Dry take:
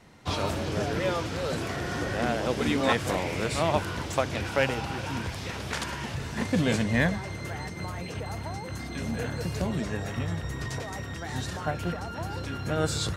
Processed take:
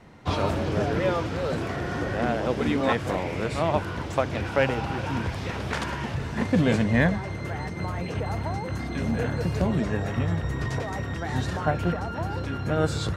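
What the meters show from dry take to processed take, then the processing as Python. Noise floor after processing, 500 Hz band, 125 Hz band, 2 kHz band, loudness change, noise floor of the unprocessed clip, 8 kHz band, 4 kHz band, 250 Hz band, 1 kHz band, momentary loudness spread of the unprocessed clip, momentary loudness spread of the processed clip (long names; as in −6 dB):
−33 dBFS, +3.0 dB, +4.5 dB, +1.0 dB, +3.0 dB, −38 dBFS, −5.5 dB, −2.5 dB, +3.5 dB, +2.5 dB, 10 LU, 7 LU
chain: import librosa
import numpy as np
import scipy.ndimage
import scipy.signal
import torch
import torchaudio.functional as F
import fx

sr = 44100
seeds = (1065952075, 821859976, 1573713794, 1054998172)

y = fx.high_shelf(x, sr, hz=3400.0, db=-11.5)
y = fx.rider(y, sr, range_db=3, speed_s=2.0)
y = y * librosa.db_to_amplitude(3.5)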